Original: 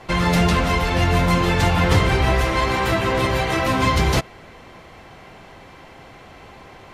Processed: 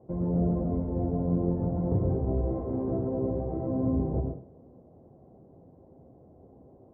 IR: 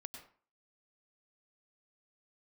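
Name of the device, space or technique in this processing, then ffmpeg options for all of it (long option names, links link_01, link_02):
next room: -filter_complex "[0:a]highpass=78,lowpass=frequency=560:width=0.5412,lowpass=frequency=560:width=1.3066[link_01];[1:a]atrim=start_sample=2205[link_02];[link_01][link_02]afir=irnorm=-1:irlink=0,asettb=1/sr,asplit=3[link_03][link_04][link_05];[link_03]atrim=end=2.474[link_06];[link_04]atrim=start=2.47:end=3.08,asetpts=PTS-STARTPTS,afade=type=in:duration=0.004:curve=qsin,afade=type=out:start_time=0.606:duration=0.004:curve=qsin,asplit=2[link_07][link_08];[link_08]adelay=39,volume=-4dB[link_09];[link_07][link_09]amix=inputs=2:normalize=0,atrim=end_sample=26901[link_10];[link_05]atrim=start=3.076[link_11];[link_06][link_10]acrossfade=duration=0.004:curve1=hsin:curve2=qsin[link_12];[link_12][link_11]acrossfade=duration=0.004:curve1=qsin:curve2=hsin,volume=-2.5dB"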